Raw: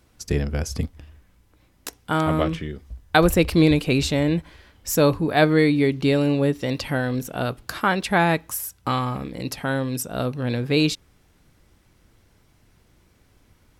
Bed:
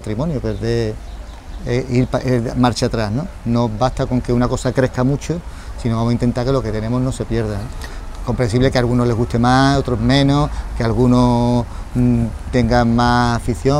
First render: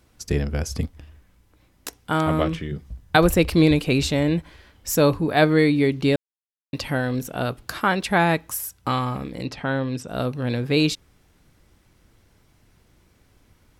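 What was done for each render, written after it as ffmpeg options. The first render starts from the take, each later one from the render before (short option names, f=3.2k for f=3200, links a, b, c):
-filter_complex "[0:a]asettb=1/sr,asplit=3[a][b][c];[a]atrim=end=2.714[d];[b]atrim=start=2.71:end=3.16,asetpts=PTS-STARTPTS,afade=t=in:d=0.004:c=qsin,afade=t=out:st=0.446:d=0.004:c=qsin,equalizer=f=150:w=2.2:g=12.5[e];[c]atrim=start=3.156[f];[d][e]acrossfade=d=0.004:c1=hsin:c2=qsin[g];[g][f]acrossfade=d=0.004:c1=qsin:c2=hsin,asettb=1/sr,asplit=3[h][i][j];[h]atrim=end=9.454[k];[i]atrim=start=9.45:end=10.08,asetpts=PTS-STARTPTS,afade=t=in:d=0.004:c=qsin,afade=t=out:st=0.626:d=0.004:c=qsin,lowpass=4.3k[l];[j]atrim=start=10.076[m];[k][l]acrossfade=d=0.004:c1=hsin:c2=qsin[n];[n][m]acrossfade=d=0.004:c1=qsin:c2=hsin,asplit=3[o][p][q];[o]atrim=end=6.16,asetpts=PTS-STARTPTS,afade=t=out:st=6.156:d=0.004:c=hsin[r];[p]atrim=start=6.16:end=6.73,asetpts=PTS-STARTPTS,volume=0[s];[q]atrim=start=6.73,asetpts=PTS-STARTPTS,afade=t=in:d=0.004:c=hsin[t];[r][s][t]concat=n=3:v=0:a=1"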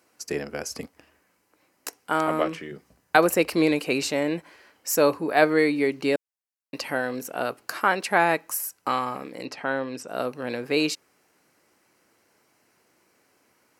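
-af "highpass=360,equalizer=f=3.5k:w=5.4:g=-11.5"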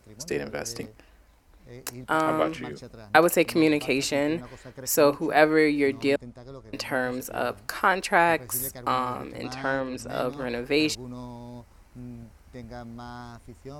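-filter_complex "[1:a]volume=-26.5dB[a];[0:a][a]amix=inputs=2:normalize=0"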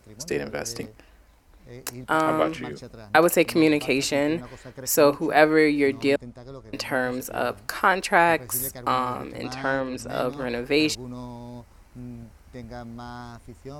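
-af "volume=2dB,alimiter=limit=-2dB:level=0:latency=1"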